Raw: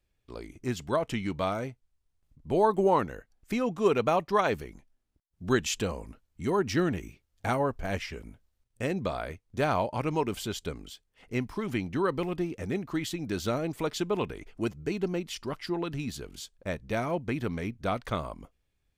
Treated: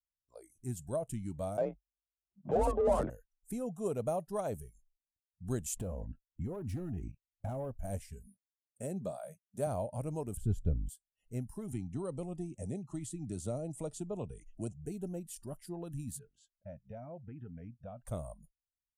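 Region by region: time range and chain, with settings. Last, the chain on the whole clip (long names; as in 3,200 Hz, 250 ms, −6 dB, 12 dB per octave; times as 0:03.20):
0:01.57–0:03.10: linear-prediction vocoder at 8 kHz pitch kept + mid-hump overdrive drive 28 dB, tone 1,400 Hz, clips at −10.5 dBFS + frequency shifter +46 Hz
0:05.76–0:07.71: low-pass filter 2,600 Hz + leveller curve on the samples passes 2 + downward compressor, threshold −28 dBFS
0:08.26–0:09.67: high-pass filter 130 Hz + comb filter 5 ms, depth 30%
0:10.37–0:10.89: RIAA equalisation playback + one half of a high-frequency compander decoder only
0:11.72–0:14.86: low-pass filter 9,100 Hz 24 dB per octave + notch filter 1,600 Hz, Q 5.9 + multiband upward and downward compressor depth 40%
0:16.19–0:18.07: low-pass filter 2,700 Hz + low-shelf EQ 110 Hz −5 dB + downward compressor 2.5 to 1, threshold −37 dBFS
whole clip: dynamic equaliser 1,900 Hz, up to −4 dB, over −47 dBFS, Q 1.8; noise reduction from a noise print of the clip's start 25 dB; drawn EQ curve 120 Hz 0 dB, 380 Hz −10 dB, 620 Hz −2 dB, 990 Hz −15 dB, 3,100 Hz −20 dB, 5,400 Hz −13 dB, 9,200 Hz +11 dB, 15,000 Hz −1 dB; level −3 dB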